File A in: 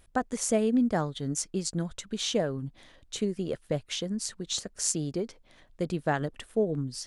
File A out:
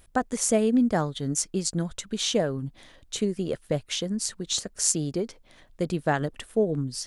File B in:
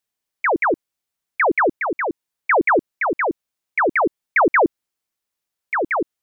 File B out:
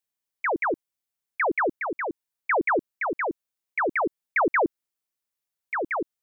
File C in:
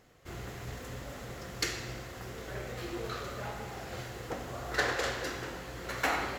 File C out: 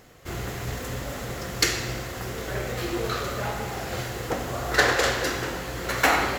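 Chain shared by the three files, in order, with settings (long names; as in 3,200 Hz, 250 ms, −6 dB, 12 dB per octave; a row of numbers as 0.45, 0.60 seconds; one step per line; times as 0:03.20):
high-shelf EQ 8,900 Hz +5 dB
loudness normalisation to −27 LKFS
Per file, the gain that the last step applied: +3.0, −7.0, +9.5 decibels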